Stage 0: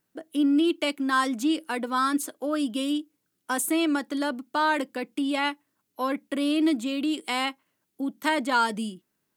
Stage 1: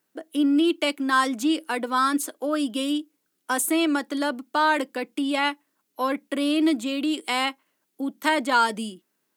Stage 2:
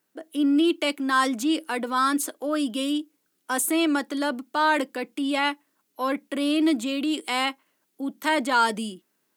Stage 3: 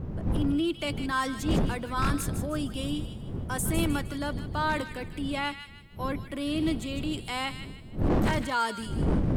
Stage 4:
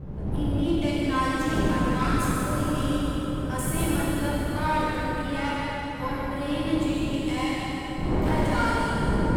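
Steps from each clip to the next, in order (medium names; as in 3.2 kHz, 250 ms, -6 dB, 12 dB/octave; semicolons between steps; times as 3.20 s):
high-pass 240 Hz 12 dB/octave; trim +3 dB
transient shaper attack -3 dB, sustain +2 dB
wind noise 170 Hz -22 dBFS; wavefolder -11 dBFS; feedback echo behind a high-pass 155 ms, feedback 38%, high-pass 1.7 kHz, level -8.5 dB; trim -7 dB
valve stage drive 22 dB, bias 0.55; plate-style reverb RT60 5 s, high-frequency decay 0.55×, DRR -8.5 dB; trim -2.5 dB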